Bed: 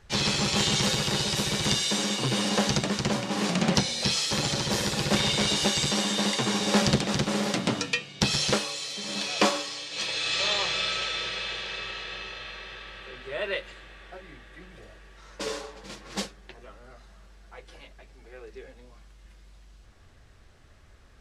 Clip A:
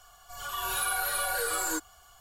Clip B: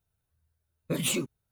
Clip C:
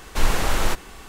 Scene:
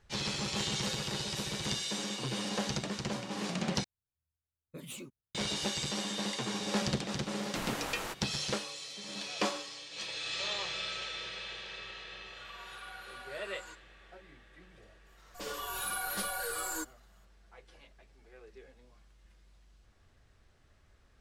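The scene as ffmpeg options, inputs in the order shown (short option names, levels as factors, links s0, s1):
-filter_complex "[1:a]asplit=2[s0][s1];[0:a]volume=0.335[s2];[3:a]highpass=f=220:p=1[s3];[s0]highpass=700,lowpass=4900[s4];[s1]agate=range=0.0224:threshold=0.00316:ratio=3:release=100:detection=peak[s5];[s2]asplit=2[s6][s7];[s6]atrim=end=3.844[s8];[2:a]atrim=end=1.51,asetpts=PTS-STARTPTS,volume=0.15[s9];[s7]atrim=start=5.346[s10];[s3]atrim=end=1.08,asetpts=PTS-STARTPTS,volume=0.224,afade=t=in:d=0.004:c=hsin,afade=t=out:st=1.076:d=0.004:c=hsin,adelay=7390[s11];[s4]atrim=end=2.2,asetpts=PTS-STARTPTS,volume=0.168,afade=t=in:d=0.004:c=hsin,afade=t=out:st=2.196:d=0.004:c=hsin,adelay=11960[s12];[s5]atrim=end=2.2,asetpts=PTS-STARTPTS,volume=0.473,afade=t=in:d=0.004:c=hsin,afade=t=out:st=2.196:d=0.004:c=hsin,adelay=15050[s13];[s8][s9]acrossfade=d=0.004:c1=hsin:c2=hsin[s14];[s14][s10]acrossfade=d=0.004:c1=hsin:c2=hsin[s15];[s15][s11][s12][s13]amix=inputs=4:normalize=0"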